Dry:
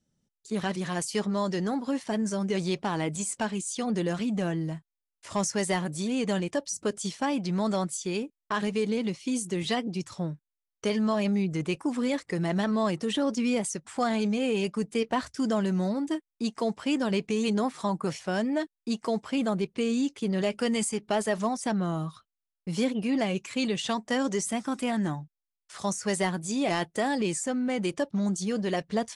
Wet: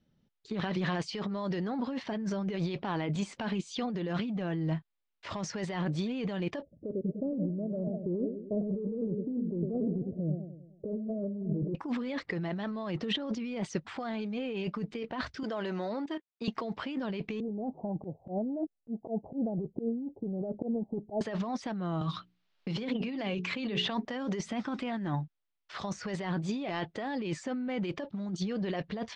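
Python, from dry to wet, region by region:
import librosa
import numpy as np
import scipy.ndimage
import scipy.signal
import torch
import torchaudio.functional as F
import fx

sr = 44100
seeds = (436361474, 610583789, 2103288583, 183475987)

y = fx.chain(x, sr, fx.cheby1_lowpass(hz=620.0, order=6),
    fx.echo_warbled(ms=100, feedback_pct=51, rate_hz=2.8, cents=129, wet_db=-11.0), at=(6.62, 11.75))
y = fx.chain(y, sr, fx.highpass(hz=390.0, slope=12),
    fx.level_steps(step_db=13), at=(15.43, 16.48))
y = fx.chain(y, sr, fx.steep_lowpass(hz=810.0, slope=72),
    fx.auto_swell(attack_ms=194.0), at=(17.4, 21.21))
y = fx.chain(y, sr, fx.hum_notches(base_hz=60, count=7),
    fx.band_squash(depth_pct=70), at=(22.01, 24.05))
y = scipy.signal.sosfilt(scipy.signal.butter(4, 4100.0, 'lowpass', fs=sr, output='sos'), y)
y = fx.over_compress(y, sr, threshold_db=-33.0, ratio=-1.0)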